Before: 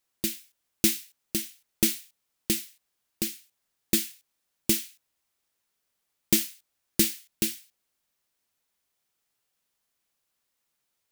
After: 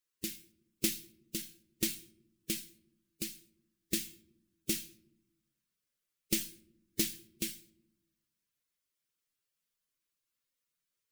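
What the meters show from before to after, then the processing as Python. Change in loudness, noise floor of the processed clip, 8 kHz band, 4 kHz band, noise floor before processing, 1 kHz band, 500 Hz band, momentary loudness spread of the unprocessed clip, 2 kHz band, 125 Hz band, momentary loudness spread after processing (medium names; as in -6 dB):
-9.0 dB, under -85 dBFS, -8.5 dB, -7.5 dB, -80 dBFS, -12.0 dB, -9.0 dB, 16 LU, -7.5 dB, -8.5 dB, 15 LU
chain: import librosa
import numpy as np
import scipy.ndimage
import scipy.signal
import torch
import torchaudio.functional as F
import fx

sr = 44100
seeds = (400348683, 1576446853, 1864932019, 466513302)

y = fx.spec_quant(x, sr, step_db=15)
y = fx.peak_eq(y, sr, hz=790.0, db=-14.0, octaves=0.53)
y = fx.comb_fb(y, sr, f0_hz=540.0, decay_s=0.33, harmonics='all', damping=0.0, mix_pct=60)
y = fx.room_shoebox(y, sr, seeds[0], volume_m3=2200.0, walls='furnished', distance_m=0.51)
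y = fx.doppler_dist(y, sr, depth_ms=0.11)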